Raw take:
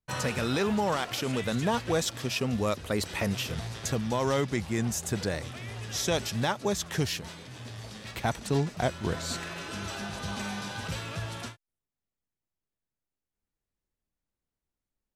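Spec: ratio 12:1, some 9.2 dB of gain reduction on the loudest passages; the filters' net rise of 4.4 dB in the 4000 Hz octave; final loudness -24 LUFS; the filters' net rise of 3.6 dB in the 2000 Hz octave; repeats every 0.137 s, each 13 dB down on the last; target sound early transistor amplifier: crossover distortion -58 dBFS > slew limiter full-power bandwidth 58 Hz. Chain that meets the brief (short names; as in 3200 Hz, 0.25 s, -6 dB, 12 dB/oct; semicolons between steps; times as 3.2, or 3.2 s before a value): bell 2000 Hz +3.5 dB; bell 4000 Hz +4.5 dB; compressor 12:1, threshold -31 dBFS; feedback echo 0.137 s, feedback 22%, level -13 dB; crossover distortion -58 dBFS; slew limiter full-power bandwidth 58 Hz; gain +12.5 dB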